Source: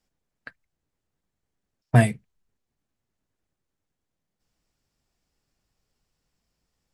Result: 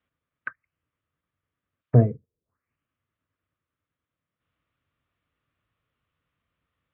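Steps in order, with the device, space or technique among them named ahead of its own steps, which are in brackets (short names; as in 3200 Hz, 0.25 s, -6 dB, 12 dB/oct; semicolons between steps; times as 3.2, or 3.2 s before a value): envelope filter bass rig (envelope low-pass 450–3600 Hz down, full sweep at -33.5 dBFS; speaker cabinet 77–2400 Hz, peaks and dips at 93 Hz +5 dB, 200 Hz -7 dB, 390 Hz -6 dB, 800 Hz -10 dB, 1200 Hz +8 dB)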